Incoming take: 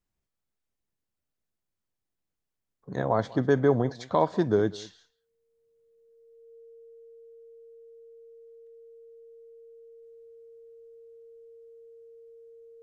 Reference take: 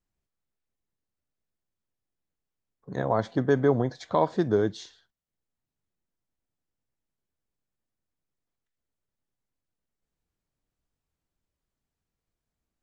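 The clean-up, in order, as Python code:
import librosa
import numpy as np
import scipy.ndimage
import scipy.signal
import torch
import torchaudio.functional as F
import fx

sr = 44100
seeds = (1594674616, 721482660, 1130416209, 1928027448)

y = fx.notch(x, sr, hz=460.0, q=30.0)
y = fx.fix_echo_inverse(y, sr, delay_ms=195, level_db=-21.0)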